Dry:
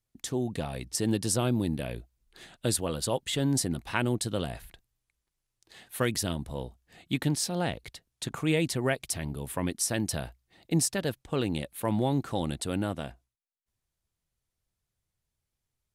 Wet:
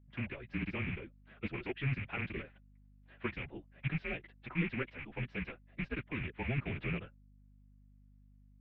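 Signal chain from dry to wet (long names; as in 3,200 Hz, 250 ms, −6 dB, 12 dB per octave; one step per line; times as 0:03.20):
loose part that buzzes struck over −33 dBFS, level −20 dBFS
dynamic equaliser 870 Hz, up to −7 dB, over −45 dBFS, Q 0.9
single-sideband voice off tune −140 Hz 240–2,800 Hz
multi-voice chorus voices 4, 0.89 Hz, delay 20 ms, depth 4.3 ms
phase-vocoder stretch with locked phases 0.54×
mains hum 50 Hz, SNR 21 dB
level −1 dB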